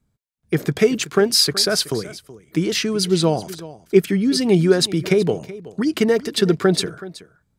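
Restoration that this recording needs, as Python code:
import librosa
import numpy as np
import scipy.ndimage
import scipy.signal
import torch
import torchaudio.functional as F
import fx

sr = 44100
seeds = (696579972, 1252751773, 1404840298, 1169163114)

y = fx.fix_echo_inverse(x, sr, delay_ms=375, level_db=-17.5)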